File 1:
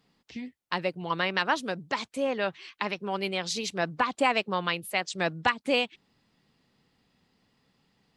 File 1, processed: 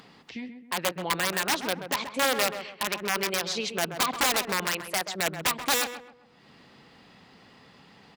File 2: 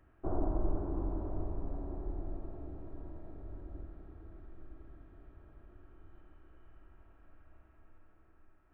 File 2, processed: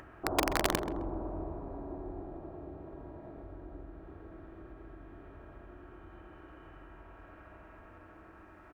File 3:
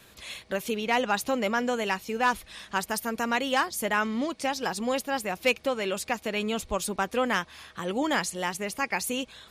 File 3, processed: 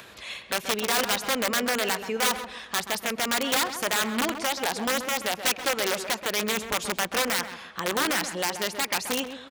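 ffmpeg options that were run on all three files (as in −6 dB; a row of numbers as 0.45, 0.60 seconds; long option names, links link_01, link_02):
-filter_complex "[0:a]lowpass=frequency=2900:poles=1,equalizer=frequency=70:width=7.8:gain=-4.5,asplit=2[link_01][link_02];[link_02]alimiter=limit=-20.5dB:level=0:latency=1:release=99,volume=0dB[link_03];[link_01][link_03]amix=inputs=2:normalize=0,aeval=exprs='(mod(6.68*val(0)+1,2)-1)/6.68':channel_layout=same,highpass=43,lowshelf=frequency=340:gain=-9,asplit=2[link_04][link_05];[link_05]adelay=131,lowpass=frequency=1600:poles=1,volume=-8dB,asplit=2[link_06][link_07];[link_07]adelay=131,lowpass=frequency=1600:poles=1,volume=0.35,asplit=2[link_08][link_09];[link_09]adelay=131,lowpass=frequency=1600:poles=1,volume=0.35,asplit=2[link_10][link_11];[link_11]adelay=131,lowpass=frequency=1600:poles=1,volume=0.35[link_12];[link_04][link_06][link_08][link_10][link_12]amix=inputs=5:normalize=0,acompressor=mode=upward:threshold=-41dB:ratio=2.5"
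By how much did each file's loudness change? +2.0, +3.5, +2.5 LU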